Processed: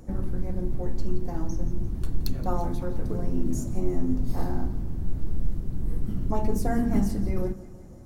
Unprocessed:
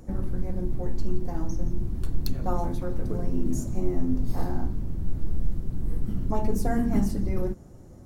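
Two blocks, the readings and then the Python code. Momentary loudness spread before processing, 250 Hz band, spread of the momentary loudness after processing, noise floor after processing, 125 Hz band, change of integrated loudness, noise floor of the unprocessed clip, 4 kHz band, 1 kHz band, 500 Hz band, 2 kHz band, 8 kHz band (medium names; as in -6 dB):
7 LU, 0.0 dB, 7 LU, -42 dBFS, 0.0 dB, 0.0 dB, -46 dBFS, 0.0 dB, 0.0 dB, 0.0 dB, 0.0 dB, no reading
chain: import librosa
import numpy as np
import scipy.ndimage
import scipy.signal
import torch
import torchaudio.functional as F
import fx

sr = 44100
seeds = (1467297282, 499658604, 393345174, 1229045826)

y = fx.echo_feedback(x, sr, ms=173, feedback_pct=57, wet_db=-17.5)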